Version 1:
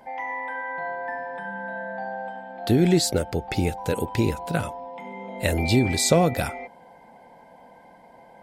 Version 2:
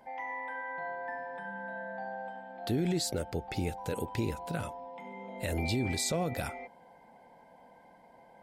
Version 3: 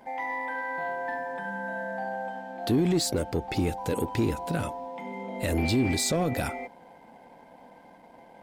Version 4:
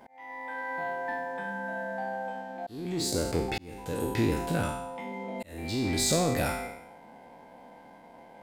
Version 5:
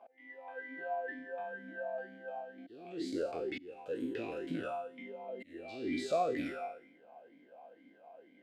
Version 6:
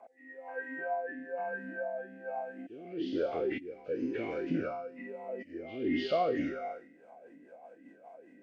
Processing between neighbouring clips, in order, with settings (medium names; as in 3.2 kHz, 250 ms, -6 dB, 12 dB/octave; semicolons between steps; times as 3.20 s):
peak limiter -15 dBFS, peak gain reduction 9 dB; trim -7.5 dB
waveshaping leveller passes 1; peaking EQ 290 Hz +5.5 dB 0.73 oct; trim +2.5 dB
spectral sustain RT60 0.77 s; slow attack 668 ms; trim -1.5 dB
talking filter a-i 2.1 Hz; trim +3.5 dB
knee-point frequency compression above 1.7 kHz 1.5:1; rotary cabinet horn 1.1 Hz, later 5 Hz, at 6.36 s; trim +6.5 dB